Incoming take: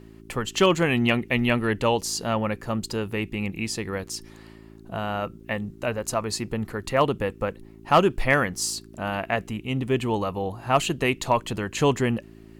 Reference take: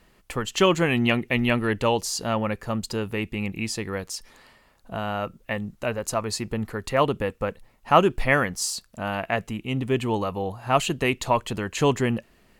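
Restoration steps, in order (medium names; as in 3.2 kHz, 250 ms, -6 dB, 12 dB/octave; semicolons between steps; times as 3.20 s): clip repair -9 dBFS; de-hum 54.9 Hz, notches 7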